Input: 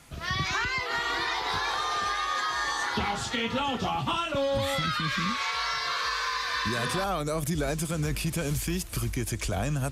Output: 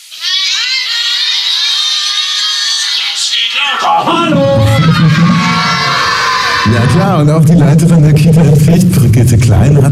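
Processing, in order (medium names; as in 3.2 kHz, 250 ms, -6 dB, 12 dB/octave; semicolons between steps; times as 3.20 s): 6.65–8.70 s: treble shelf 8.6 kHz -7.5 dB; in parallel at +0.5 dB: gain riding; on the sum: high-pass 72 Hz 24 dB/octave; bass shelf 380 Hz +8.5 dB; on a send at -13.5 dB: reverberation RT60 1.1 s, pre-delay 3 ms; on the sum: high-pass sweep 3.6 kHz -> 110 Hz, 3.47–4.50 s; band-stop 3.5 kHz, Q 19; sine folder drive 6 dB, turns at 0.5 dBFS; loudness maximiser +5 dB; trim -1 dB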